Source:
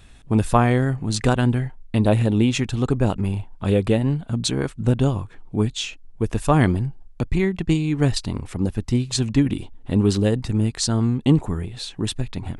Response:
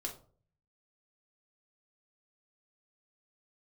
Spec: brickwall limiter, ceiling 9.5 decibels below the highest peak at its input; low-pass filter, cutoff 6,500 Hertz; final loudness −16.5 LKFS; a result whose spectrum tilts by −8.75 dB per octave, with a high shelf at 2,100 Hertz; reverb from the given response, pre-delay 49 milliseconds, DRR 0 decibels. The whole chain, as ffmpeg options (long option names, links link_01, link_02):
-filter_complex "[0:a]lowpass=6500,highshelf=frequency=2100:gain=-8.5,alimiter=limit=-14dB:level=0:latency=1,asplit=2[link_01][link_02];[1:a]atrim=start_sample=2205,adelay=49[link_03];[link_02][link_03]afir=irnorm=-1:irlink=0,volume=1dB[link_04];[link_01][link_04]amix=inputs=2:normalize=0,volume=5.5dB"